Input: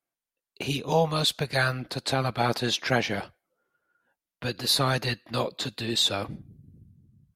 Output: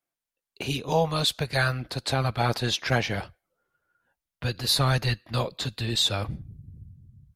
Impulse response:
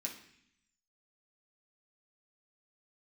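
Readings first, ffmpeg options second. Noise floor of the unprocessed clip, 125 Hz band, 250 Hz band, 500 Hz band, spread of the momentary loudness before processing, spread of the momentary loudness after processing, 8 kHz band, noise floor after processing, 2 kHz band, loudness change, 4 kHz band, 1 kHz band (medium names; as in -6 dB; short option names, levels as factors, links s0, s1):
under -85 dBFS, +4.0 dB, -1.0 dB, -1.0 dB, 11 LU, 11 LU, 0.0 dB, under -85 dBFS, 0.0 dB, +0.5 dB, 0.0 dB, -0.5 dB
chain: -af "asubboost=boost=4.5:cutoff=120,asoftclip=type=hard:threshold=0.266"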